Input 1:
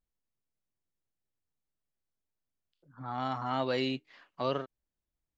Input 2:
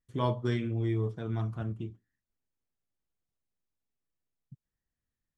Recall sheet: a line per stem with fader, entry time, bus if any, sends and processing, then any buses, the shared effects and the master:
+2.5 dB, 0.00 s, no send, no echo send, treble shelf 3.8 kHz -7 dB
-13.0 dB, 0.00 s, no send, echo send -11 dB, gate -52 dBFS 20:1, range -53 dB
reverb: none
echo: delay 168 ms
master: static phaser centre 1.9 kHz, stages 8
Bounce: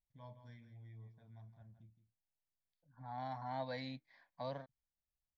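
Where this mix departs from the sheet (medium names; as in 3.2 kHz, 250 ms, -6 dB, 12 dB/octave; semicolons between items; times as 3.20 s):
stem 1 +2.5 dB -> -6.5 dB; stem 2 -13.0 dB -> -23.0 dB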